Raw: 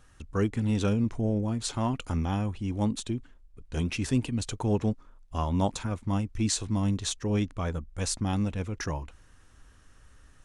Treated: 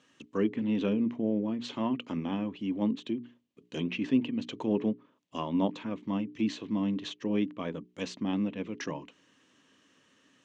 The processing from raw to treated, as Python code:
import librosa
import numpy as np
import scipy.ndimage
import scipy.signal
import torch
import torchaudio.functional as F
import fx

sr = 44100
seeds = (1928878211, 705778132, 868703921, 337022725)

y = fx.cabinet(x, sr, low_hz=180.0, low_slope=24, high_hz=6800.0, hz=(280.0, 780.0, 1400.0, 3000.0, 5100.0), db=(5, -8, -9, 6, -4))
y = fx.hum_notches(y, sr, base_hz=60, count=7)
y = fx.env_lowpass_down(y, sr, base_hz=2500.0, full_db=-29.0)